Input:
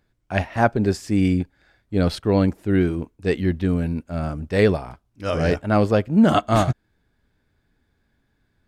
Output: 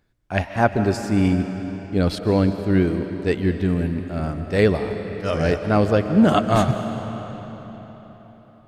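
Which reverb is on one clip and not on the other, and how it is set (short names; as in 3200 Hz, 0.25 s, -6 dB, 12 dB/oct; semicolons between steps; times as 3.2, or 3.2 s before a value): digital reverb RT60 4.3 s, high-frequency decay 0.8×, pre-delay 0.1 s, DRR 8 dB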